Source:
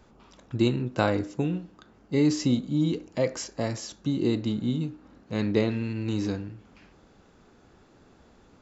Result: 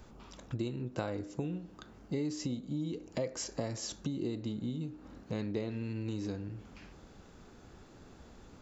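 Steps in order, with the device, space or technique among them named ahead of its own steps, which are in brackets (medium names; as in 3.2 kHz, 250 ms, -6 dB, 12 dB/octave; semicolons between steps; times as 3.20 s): ASMR close-microphone chain (bass shelf 120 Hz +6.5 dB; compression 6:1, threshold -36 dBFS, peak gain reduction 18 dB; treble shelf 6.4 kHz +7.5 dB); dynamic bell 500 Hz, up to +4 dB, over -53 dBFS, Q 0.8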